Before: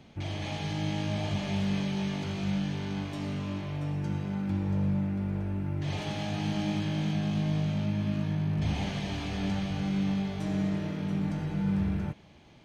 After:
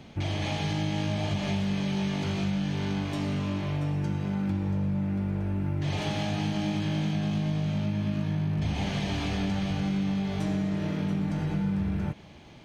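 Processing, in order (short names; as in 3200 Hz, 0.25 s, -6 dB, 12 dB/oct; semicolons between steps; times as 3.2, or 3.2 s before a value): compressor, threshold -31 dBFS, peak gain reduction 7 dB; gain +6 dB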